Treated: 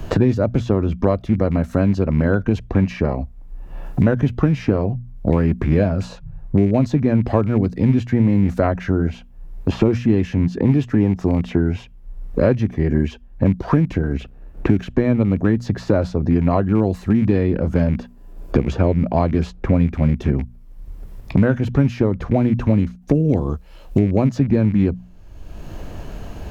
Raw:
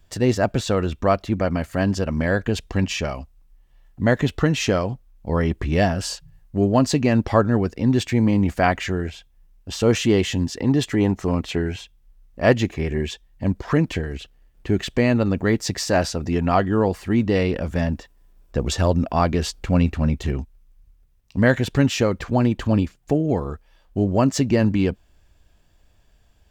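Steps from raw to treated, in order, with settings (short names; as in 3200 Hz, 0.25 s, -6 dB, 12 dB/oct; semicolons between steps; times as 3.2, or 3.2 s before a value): rattling part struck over -23 dBFS, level -25 dBFS; tilt shelf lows +8 dB, about 1400 Hz; notches 60/120/180/240 Hz; formant shift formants -2 st; three-band squash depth 100%; gain -4 dB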